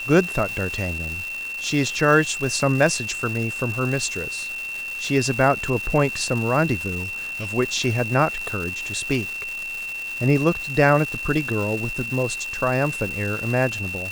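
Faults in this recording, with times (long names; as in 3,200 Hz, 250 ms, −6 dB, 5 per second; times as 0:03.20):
surface crackle 590 per second −28 dBFS
whistle 2,700 Hz −28 dBFS
0:07.03–0:07.50: clipping −25 dBFS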